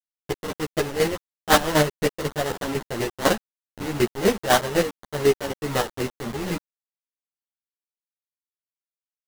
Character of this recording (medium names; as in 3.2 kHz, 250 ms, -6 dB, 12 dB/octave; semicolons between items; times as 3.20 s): aliases and images of a low sample rate 2.4 kHz, jitter 20%; chopped level 4 Hz, depth 65%, duty 25%; a quantiser's noise floor 6-bit, dither none; a shimmering, thickened sound